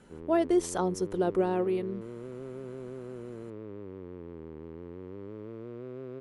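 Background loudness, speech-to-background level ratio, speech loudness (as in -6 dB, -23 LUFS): -43.0 LUFS, 14.0 dB, -29.0 LUFS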